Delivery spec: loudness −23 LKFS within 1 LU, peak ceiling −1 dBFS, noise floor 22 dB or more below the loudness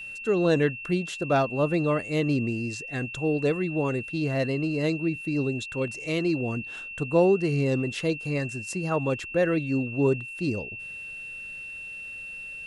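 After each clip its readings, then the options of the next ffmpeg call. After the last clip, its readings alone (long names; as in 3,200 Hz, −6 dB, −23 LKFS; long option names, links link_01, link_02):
interfering tone 2,700 Hz; level of the tone −36 dBFS; integrated loudness −27.0 LKFS; sample peak −10.0 dBFS; target loudness −23.0 LKFS
→ -af "bandreject=frequency=2700:width=30"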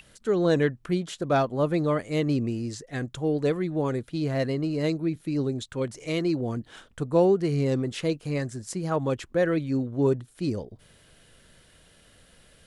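interfering tone none found; integrated loudness −27.0 LKFS; sample peak −10.5 dBFS; target loudness −23.0 LKFS
→ -af "volume=4dB"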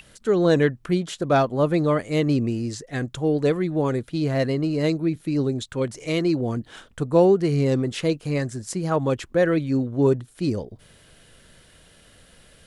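integrated loudness −23.0 LKFS; sample peak −6.5 dBFS; background noise floor −54 dBFS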